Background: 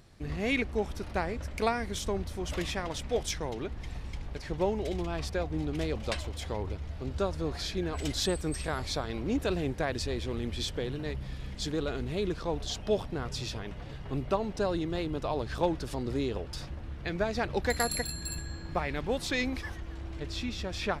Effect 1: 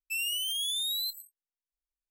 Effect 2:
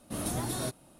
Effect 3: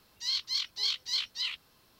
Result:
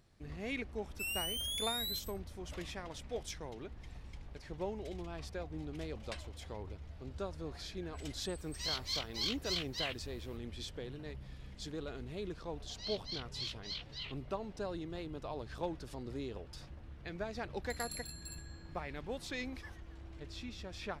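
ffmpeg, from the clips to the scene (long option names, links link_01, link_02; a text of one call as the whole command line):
ffmpeg -i bed.wav -i cue0.wav -i cue1.wav -i cue2.wav -filter_complex "[3:a]asplit=2[link_01][link_02];[0:a]volume=-10.5dB[link_03];[link_01]equalizer=frequency=4200:width_type=o:width=1.3:gain=-7.5[link_04];[link_02]lowpass=4600[link_05];[1:a]atrim=end=2.1,asetpts=PTS-STARTPTS,volume=-7dB,afade=type=in:duration=0.004:curve=hsin,afade=type=out:start_time=2.096:duration=0.004:curve=hsin,adelay=890[link_06];[link_04]atrim=end=1.99,asetpts=PTS-STARTPTS,afade=type=in:duration=0.004:curve=hsin,afade=type=out:start_time=1.986:duration=0.004:curve=hsin,adelay=8380[link_07];[link_05]atrim=end=1.99,asetpts=PTS-STARTPTS,volume=-10dB,afade=type=in:duration=0.004:curve=hsin,afade=type=out:start_time=1.986:duration=0.004:curve=hsin,adelay=12570[link_08];[link_03][link_06][link_07][link_08]amix=inputs=4:normalize=0" out.wav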